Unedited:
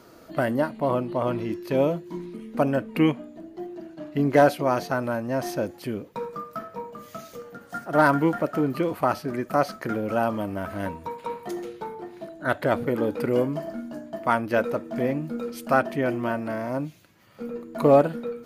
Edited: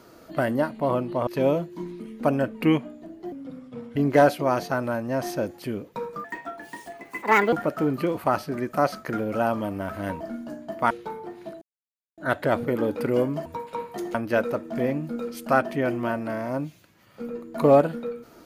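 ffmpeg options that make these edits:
ffmpeg -i in.wav -filter_complex "[0:a]asplit=11[link_01][link_02][link_03][link_04][link_05][link_06][link_07][link_08][link_09][link_10][link_11];[link_01]atrim=end=1.272[link_12];[link_02]atrim=start=1.608:end=3.664[link_13];[link_03]atrim=start=3.66:end=4.16,asetpts=PTS-STARTPTS,asetrate=34398,aresample=44100,atrim=end_sample=28269,asetpts=PTS-STARTPTS[link_14];[link_04]atrim=start=4.156:end=6.444[link_15];[link_05]atrim=start=6.44:end=8.29,asetpts=PTS-STARTPTS,asetrate=63504,aresample=44100,atrim=end_sample=56656,asetpts=PTS-STARTPTS[link_16];[link_06]atrim=start=8.286:end=10.972[link_17];[link_07]atrim=start=13.648:end=14.352[link_18];[link_08]atrim=start=11.658:end=12.37,asetpts=PTS-STARTPTS,afade=type=out:start_time=0.708:duration=0.004:curve=hsin,apad=pad_dur=0.56[link_19];[link_09]atrim=start=12.37:end=13.652,asetpts=PTS-STARTPTS,afade=type=in:duration=0.004:curve=hsin[link_20];[link_10]atrim=start=10.968:end=11.662[link_21];[link_11]atrim=start=14.348[link_22];[link_12][link_13]acrossfade=duration=0.004:curve1=hsin:curve2=hsin[link_23];[link_23][link_14]acrossfade=duration=0.004:curve1=hsin:curve2=hsin[link_24];[link_24][link_15]acrossfade=duration=0.004:curve1=hsin:curve2=hsin[link_25];[link_25][link_16]acrossfade=duration=0.004:curve1=hsin:curve2=hsin[link_26];[link_26][link_17]acrossfade=duration=0.004:curve1=hsin:curve2=hsin[link_27];[link_27][link_18]acrossfade=duration=0.004:curve1=hsin:curve2=hsin[link_28];[link_19][link_20]concat=n=2:v=0:a=1[link_29];[link_28][link_29]acrossfade=duration=0.004:curve1=hsin:curve2=hsin[link_30];[link_30][link_21]acrossfade=duration=0.004:curve1=hsin:curve2=hsin[link_31];[link_31][link_22]acrossfade=duration=0.004:curve1=hsin:curve2=hsin" out.wav

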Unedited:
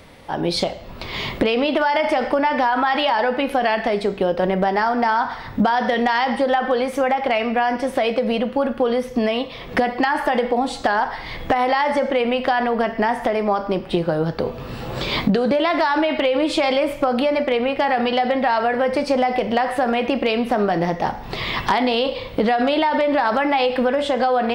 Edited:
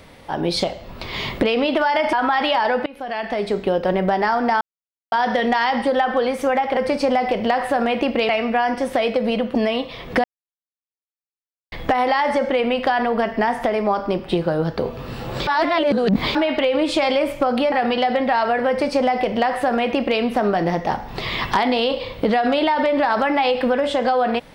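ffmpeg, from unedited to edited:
ffmpeg -i in.wav -filter_complex "[0:a]asplit=13[link_01][link_02][link_03][link_04][link_05][link_06][link_07][link_08][link_09][link_10][link_11][link_12][link_13];[link_01]atrim=end=2.132[link_14];[link_02]atrim=start=2.668:end=3.4,asetpts=PTS-STARTPTS,afade=type=out:start_time=0.728:duration=0.004:curve=hsin:silence=0.0749894[link_15];[link_03]atrim=start=3.4:end=5.15,asetpts=PTS-STARTPTS,afade=type=in:duration=0.72:silence=0.0749894,afade=type=out:start_time=1.746:duration=0.004:curve=hsin[link_16];[link_04]atrim=start=5.15:end=5.66,asetpts=PTS-STARTPTS,volume=0[link_17];[link_05]atrim=start=5.66:end=7.312,asetpts=PTS-STARTPTS,afade=type=in:duration=0.004:curve=hsin[link_18];[link_06]atrim=start=18.838:end=20.362[link_19];[link_07]atrim=start=7.308:end=8.572[link_20];[link_08]atrim=start=9.158:end=9.85,asetpts=PTS-STARTPTS,afade=type=out:start_time=0.688:duration=0.004:curve=hsin[link_21];[link_09]atrim=start=9.85:end=11.33,asetpts=PTS-STARTPTS,volume=0[link_22];[link_10]atrim=start=11.33:end=15.082,asetpts=PTS-STARTPTS,afade=type=in:duration=0.004:curve=hsin[link_23];[link_11]atrim=start=15.078:end=15.962,asetpts=PTS-STARTPTS,areverse[link_24];[link_12]atrim=start=15.958:end=17.332[link_25];[link_13]atrim=start=17.868[link_26];[link_15][link_16][link_17][link_18]concat=n=4:v=0:a=1[link_27];[link_14][link_27]acrossfade=duration=0.004:curve1=hsin:curve2=hsin[link_28];[link_28][link_19]acrossfade=duration=0.004:curve1=hsin:curve2=hsin[link_29];[link_29][link_20]acrossfade=duration=0.004:curve1=hsin:curve2=hsin[link_30];[link_21][link_22][link_23]concat=n=3:v=0:a=1[link_31];[link_30][link_31]acrossfade=duration=0.004:curve1=hsin:curve2=hsin[link_32];[link_32][link_24]acrossfade=duration=0.004:curve1=hsin:curve2=hsin[link_33];[link_33][link_25]acrossfade=duration=0.004:curve1=hsin:curve2=hsin[link_34];[link_34][link_26]acrossfade=duration=0.004:curve1=hsin:curve2=hsin" out.wav

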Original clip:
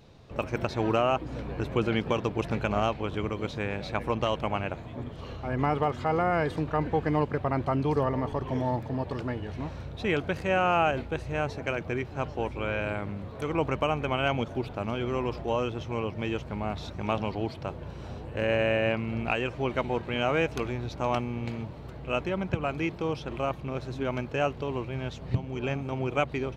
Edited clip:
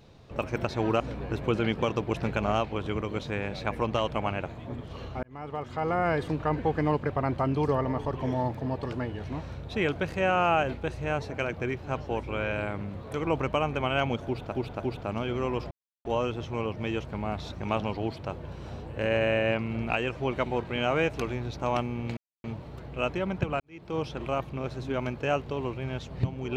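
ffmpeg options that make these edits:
ffmpeg -i in.wav -filter_complex "[0:a]asplit=8[link_01][link_02][link_03][link_04][link_05][link_06][link_07][link_08];[link_01]atrim=end=1.002[link_09];[link_02]atrim=start=1.278:end=5.51,asetpts=PTS-STARTPTS,afade=type=out:start_time=4.228:duration=0.004:curve=hsin[link_10];[link_03]atrim=start=5.51:end=14.802,asetpts=PTS-STARTPTS,afade=type=in:duration=0.84[link_11];[link_04]atrim=start=14.518:end=14.802[link_12];[link_05]atrim=start=14.518:end=15.43,asetpts=PTS-STARTPTS,afade=type=out:start_time=0.908:duration=0.004:curve=hsin,apad=pad_dur=0.34[link_13];[link_06]atrim=start=15.43:end=21.55,asetpts=PTS-STARTPTS,afade=type=in:duration=0.004:curve=hsin,afade=type=out:start_time=6.116:duration=0.004:curve=hsin,apad=pad_dur=0.27[link_14];[link_07]atrim=start=21.55:end=22.71,asetpts=PTS-STARTPTS,afade=type=in:duration=0.004:curve=hsin,afade=type=out:start_time=1.156:duration=0.004:curve=hsin[link_15];[link_08]atrim=start=22.71,asetpts=PTS-STARTPTS,afade=type=in:duration=0.38:curve=qua[link_16];[link_10][link_11]concat=n=2:v=0:a=1[link_17];[link_09][link_17]acrossfade=duration=0.004:curve1=hsin:curve2=hsin[link_18];[link_18][link_12]acrossfade=duration=0.004:curve1=hsin:curve2=hsin[link_19];[link_13][link_14][link_15][link_16]concat=n=4:v=0:a=1[link_20];[link_19][link_20]acrossfade=duration=0.004:curve1=hsin:curve2=hsin" out.wav

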